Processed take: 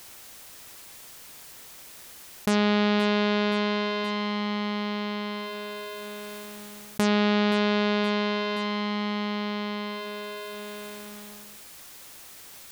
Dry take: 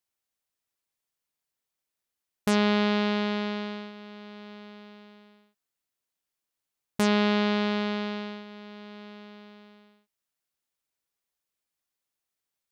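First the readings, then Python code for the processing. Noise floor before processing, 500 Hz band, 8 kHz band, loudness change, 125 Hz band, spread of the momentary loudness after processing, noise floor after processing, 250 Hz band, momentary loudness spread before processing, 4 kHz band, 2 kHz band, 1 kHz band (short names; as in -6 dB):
under -85 dBFS, +4.0 dB, +5.5 dB, -0.5 dB, +3.0 dB, 20 LU, -47 dBFS, +3.0 dB, 21 LU, +4.5 dB, +4.5 dB, +4.5 dB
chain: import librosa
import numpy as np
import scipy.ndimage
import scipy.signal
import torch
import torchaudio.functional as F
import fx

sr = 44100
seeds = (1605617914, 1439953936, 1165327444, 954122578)

y = fx.echo_feedback(x, sr, ms=523, feedback_pct=38, wet_db=-16)
y = fx.env_flatten(y, sr, amount_pct=70)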